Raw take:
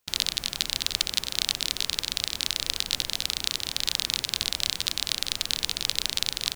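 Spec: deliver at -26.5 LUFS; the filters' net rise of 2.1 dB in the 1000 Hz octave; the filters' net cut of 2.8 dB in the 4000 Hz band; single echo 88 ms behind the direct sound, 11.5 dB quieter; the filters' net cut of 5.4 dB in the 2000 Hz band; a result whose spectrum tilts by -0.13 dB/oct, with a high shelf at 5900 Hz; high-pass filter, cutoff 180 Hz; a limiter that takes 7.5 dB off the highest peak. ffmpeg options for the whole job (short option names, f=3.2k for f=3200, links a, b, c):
-af "highpass=180,equalizer=f=1k:t=o:g=5,equalizer=f=2k:t=o:g=-8,equalizer=f=4k:t=o:g=-3.5,highshelf=f=5.9k:g=5.5,alimiter=limit=-9.5dB:level=0:latency=1,aecho=1:1:88:0.266,volume=5dB"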